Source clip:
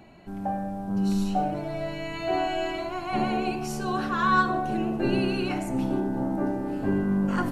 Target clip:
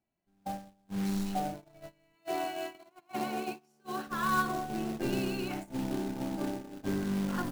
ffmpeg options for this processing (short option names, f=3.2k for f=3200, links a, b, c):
-filter_complex "[0:a]asplit=3[a][b][c];[a]afade=t=out:st=2.14:d=0.02[d];[b]highpass=210,afade=t=in:st=2.14:d=0.02,afade=t=out:st=4.06:d=0.02[e];[c]afade=t=in:st=4.06:d=0.02[f];[d][e][f]amix=inputs=3:normalize=0,agate=range=-28dB:threshold=-28dB:ratio=16:detection=peak,acrusher=bits=3:mode=log:mix=0:aa=0.000001,volume=-7.5dB"